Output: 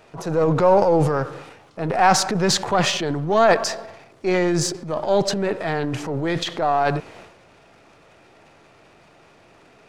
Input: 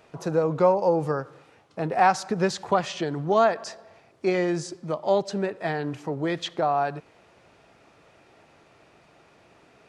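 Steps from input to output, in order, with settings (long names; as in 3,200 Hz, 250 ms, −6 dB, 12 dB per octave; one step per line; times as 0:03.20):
gain on one half-wave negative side −3 dB
transient designer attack −4 dB, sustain +10 dB
level +5.5 dB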